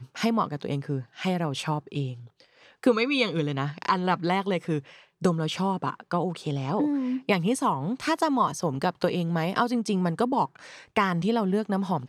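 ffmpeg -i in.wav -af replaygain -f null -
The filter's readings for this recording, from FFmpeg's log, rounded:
track_gain = +7.2 dB
track_peak = 0.224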